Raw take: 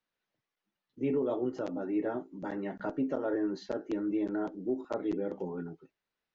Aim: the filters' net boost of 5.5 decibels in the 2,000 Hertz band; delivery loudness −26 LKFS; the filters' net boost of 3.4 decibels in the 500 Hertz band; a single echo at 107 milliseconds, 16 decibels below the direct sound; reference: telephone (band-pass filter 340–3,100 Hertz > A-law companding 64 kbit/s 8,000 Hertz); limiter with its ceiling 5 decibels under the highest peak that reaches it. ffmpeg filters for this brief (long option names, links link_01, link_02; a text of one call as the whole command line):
ffmpeg -i in.wav -af "equalizer=frequency=500:width_type=o:gain=5.5,equalizer=frequency=2000:width_type=o:gain=8,alimiter=limit=-22.5dB:level=0:latency=1,highpass=340,lowpass=3100,aecho=1:1:107:0.158,volume=9dB" -ar 8000 -c:a pcm_alaw out.wav